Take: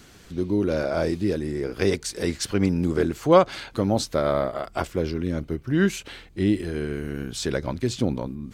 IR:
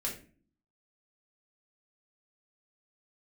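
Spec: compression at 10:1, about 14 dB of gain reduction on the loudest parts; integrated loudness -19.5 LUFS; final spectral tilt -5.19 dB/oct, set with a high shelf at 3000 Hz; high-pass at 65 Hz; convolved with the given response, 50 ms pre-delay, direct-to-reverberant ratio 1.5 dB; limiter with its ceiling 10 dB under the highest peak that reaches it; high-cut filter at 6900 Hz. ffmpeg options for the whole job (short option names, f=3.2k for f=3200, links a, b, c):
-filter_complex "[0:a]highpass=65,lowpass=6.9k,highshelf=f=3k:g=4.5,acompressor=threshold=-24dB:ratio=10,alimiter=limit=-20dB:level=0:latency=1,asplit=2[a][b];[1:a]atrim=start_sample=2205,adelay=50[c];[b][c]afir=irnorm=-1:irlink=0,volume=-4dB[d];[a][d]amix=inputs=2:normalize=0,volume=10dB"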